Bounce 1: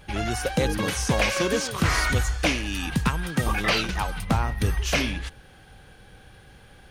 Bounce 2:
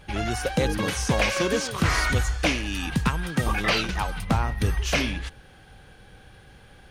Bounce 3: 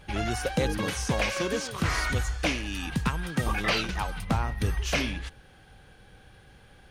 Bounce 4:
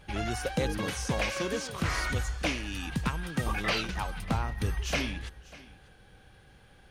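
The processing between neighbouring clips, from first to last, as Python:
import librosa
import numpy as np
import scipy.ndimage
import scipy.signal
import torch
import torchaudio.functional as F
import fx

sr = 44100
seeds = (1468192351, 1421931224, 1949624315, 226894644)

y1 = fx.high_shelf(x, sr, hz=9900.0, db=-4.5)
y2 = fx.rider(y1, sr, range_db=10, speed_s=2.0)
y2 = y2 * librosa.db_to_amplitude(-4.0)
y3 = y2 + 10.0 ** (-20.0 / 20.0) * np.pad(y2, (int(594 * sr / 1000.0), 0))[:len(y2)]
y3 = y3 * librosa.db_to_amplitude(-3.0)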